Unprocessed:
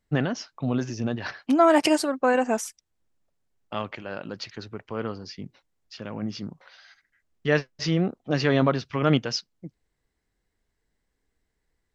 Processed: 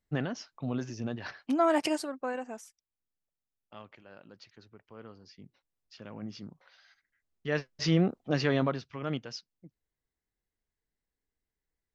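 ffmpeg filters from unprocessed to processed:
-af "volume=9dB,afade=t=out:st=1.71:d=0.83:silence=0.316228,afade=t=in:st=5.06:d=1.02:silence=0.398107,afade=t=in:st=7.51:d=0.44:silence=0.375837,afade=t=out:st=7.95:d=1.01:silence=0.251189"

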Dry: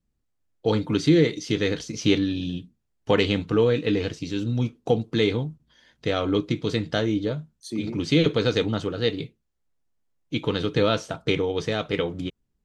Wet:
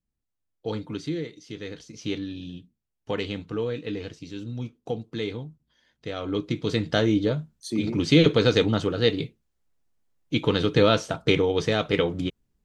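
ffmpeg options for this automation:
-af "volume=10dB,afade=t=out:st=0.8:d=0.51:silence=0.421697,afade=t=in:st=1.31:d=1.02:silence=0.446684,afade=t=in:st=6.14:d=0.92:silence=0.281838"

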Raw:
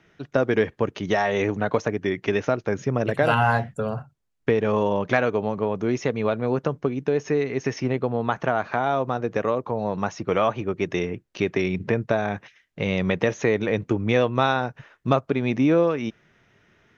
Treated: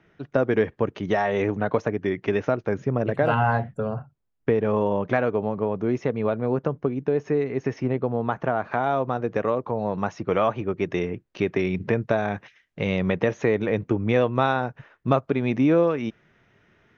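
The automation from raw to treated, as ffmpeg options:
-af "asetnsamples=n=441:p=0,asendcmd='2.78 lowpass f 1300;8.71 lowpass f 2600;11.68 lowpass f 4500;12.97 lowpass f 2200;15.14 lowpass f 3300',lowpass=f=2k:p=1"

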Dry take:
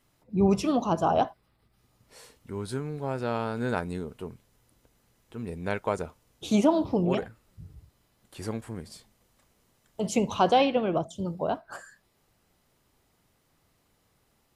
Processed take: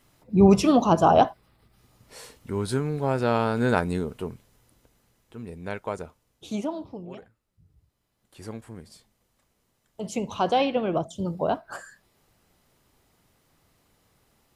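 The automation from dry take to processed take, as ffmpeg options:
-af "volume=24.5dB,afade=t=out:st=3.99:d=1.49:silence=0.334965,afade=t=out:st=6.02:d=1.02:silence=0.266073,afade=t=in:st=7.64:d=0.89:silence=0.298538,afade=t=in:st=10.21:d=1.22:silence=0.421697"

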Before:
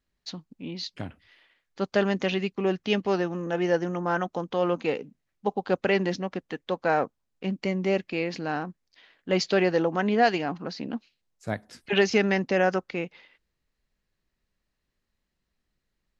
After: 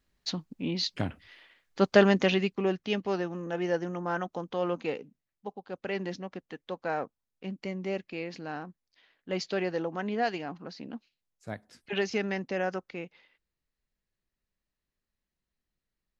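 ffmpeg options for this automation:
-af "volume=12.5dB,afade=t=out:st=1.9:d=0.93:silence=0.334965,afade=t=out:st=4.84:d=0.83:silence=0.281838,afade=t=in:st=5.67:d=0.37:silence=0.398107"

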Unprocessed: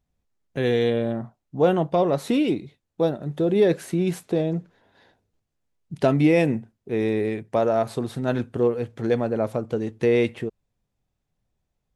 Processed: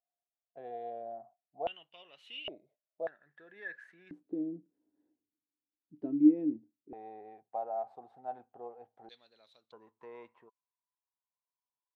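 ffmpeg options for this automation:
-af "asetnsamples=n=441:p=0,asendcmd='1.67 bandpass f 2900;2.48 bandpass f 620;3.07 bandpass f 1700;4.11 bandpass f 300;6.93 bandpass f 770;9.09 bandpass f 3900;9.72 bandpass f 1000',bandpass=f=700:t=q:w=18:csg=0"

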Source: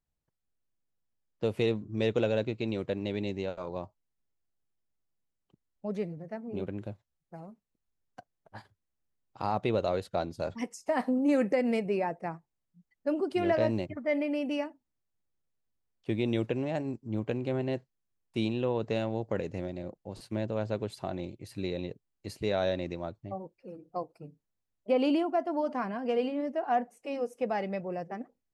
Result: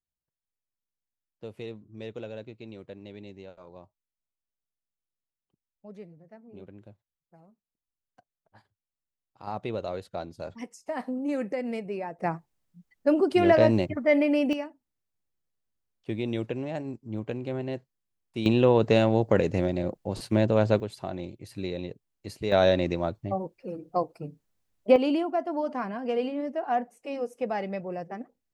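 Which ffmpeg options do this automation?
-af "asetnsamples=n=441:p=0,asendcmd='9.47 volume volume -4dB;12.19 volume volume 7.5dB;14.53 volume volume -1dB;18.46 volume volume 10dB;20.8 volume volume 1dB;22.52 volume volume 8.5dB;24.96 volume volume 1dB',volume=-11dB"

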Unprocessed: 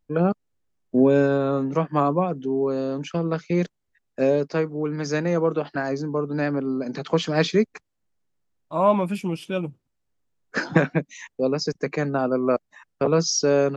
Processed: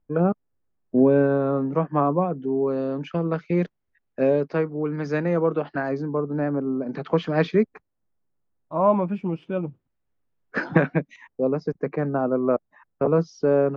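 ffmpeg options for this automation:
-af "asetnsamples=n=441:p=0,asendcmd='2.49 lowpass f 2500;6.2 lowpass f 1200;6.89 lowpass f 2100;7.63 lowpass f 1400;9.68 lowpass f 2500;11.16 lowpass f 1300',lowpass=1.6k"

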